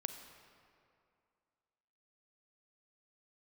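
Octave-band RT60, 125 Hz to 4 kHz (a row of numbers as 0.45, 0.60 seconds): 2.3, 2.4, 2.4, 2.4, 2.0, 1.5 seconds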